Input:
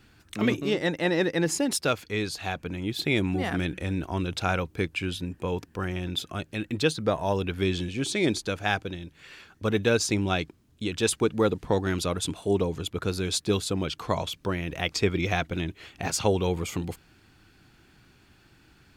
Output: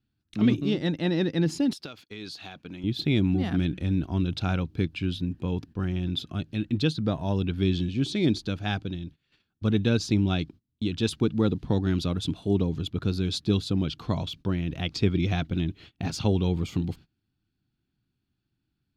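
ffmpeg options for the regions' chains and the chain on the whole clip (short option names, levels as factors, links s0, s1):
-filter_complex "[0:a]asettb=1/sr,asplit=3[s0][s1][s2];[s0]atrim=end=1.734[s3];[s1]atrim=start=1.73:end=2.84,asetpts=PTS-STARTPTS,afade=t=in:d=0.004:c=qsin,afade=t=out:st=1.106:d=0.004:c=qsin,highpass=f=550:p=1,acompressor=threshold=0.0282:ratio=8:attack=3.2:release=140:knee=1:detection=peak[s4];[s2]atrim=start=2.836[s5];[s3][s4]acrossfade=d=0.004:c1=hsin:c2=qsin[s6];[s6][s5]acrossfade=d=0.004:c1=qsin:c2=hsin,aemphasis=mode=reproduction:type=50kf,agate=range=0.0708:threshold=0.00501:ratio=16:detection=peak,equalizer=f=125:t=o:w=1:g=4,equalizer=f=250:t=o:w=1:g=4,equalizer=f=500:t=o:w=1:g=-8,equalizer=f=1000:t=o:w=1:g=-6,equalizer=f=2000:t=o:w=1:g=-8,equalizer=f=4000:t=o:w=1:g=5,equalizer=f=8000:t=o:w=1:g=-7,volume=1.19"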